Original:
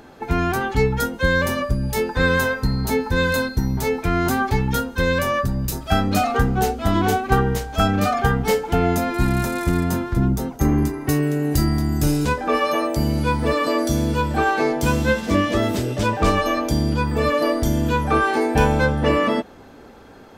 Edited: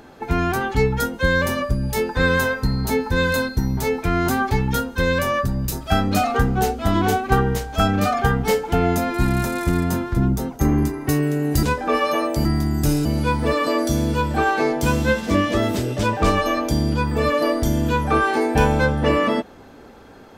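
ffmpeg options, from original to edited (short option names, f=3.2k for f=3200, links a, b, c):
-filter_complex "[0:a]asplit=4[a][b][c][d];[a]atrim=end=11.632[e];[b]atrim=start=12.228:end=13.052[f];[c]atrim=start=11.628:end=12.232[g];[d]atrim=start=13.048[h];[e][f]acrossfade=d=0.004:c1=hsin:c2=hsin[i];[i][g]acrossfade=d=0.004:c1=hsin:c2=hsin[j];[j][h]acrossfade=d=0.004:c1=hsin:c2=hsin"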